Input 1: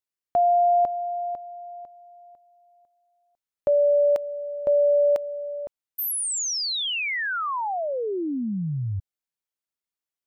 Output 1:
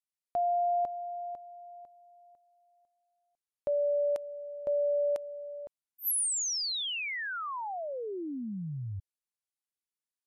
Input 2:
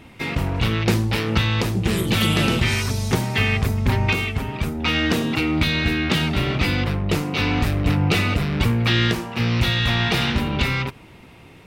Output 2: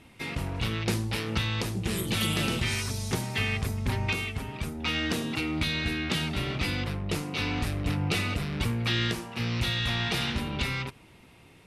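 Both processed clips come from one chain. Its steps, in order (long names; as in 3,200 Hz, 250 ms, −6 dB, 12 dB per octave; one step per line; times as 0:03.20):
Chebyshev low-pass filter 12,000 Hz, order 6
high-shelf EQ 6,500 Hz +9 dB
level −8.5 dB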